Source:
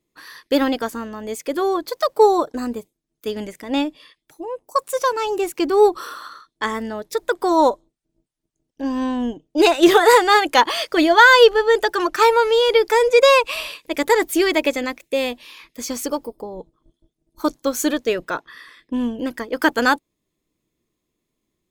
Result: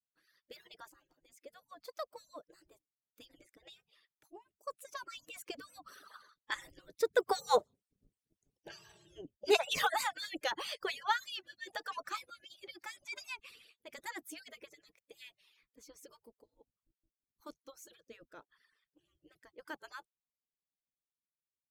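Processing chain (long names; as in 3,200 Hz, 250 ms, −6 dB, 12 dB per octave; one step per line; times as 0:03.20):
harmonic-percussive split with one part muted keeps percussive
source passing by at 0:08.03, 6 m/s, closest 2.9 metres
rotating-speaker cabinet horn 0.9 Hz
level +1 dB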